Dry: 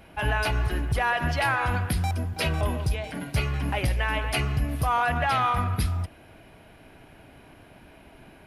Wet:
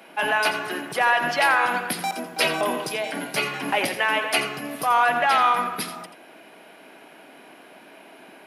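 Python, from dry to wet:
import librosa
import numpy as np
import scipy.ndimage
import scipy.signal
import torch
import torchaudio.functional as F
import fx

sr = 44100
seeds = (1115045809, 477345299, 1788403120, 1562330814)

p1 = scipy.signal.sosfilt(scipy.signal.bessel(8, 330.0, 'highpass', norm='mag', fs=sr, output='sos'), x)
p2 = fx.rider(p1, sr, range_db=10, speed_s=2.0)
p3 = p1 + (p2 * 10.0 ** (-1.0 / 20.0))
y = p3 + 10.0 ** (-11.0 / 20.0) * np.pad(p3, (int(85 * sr / 1000.0), 0))[:len(p3)]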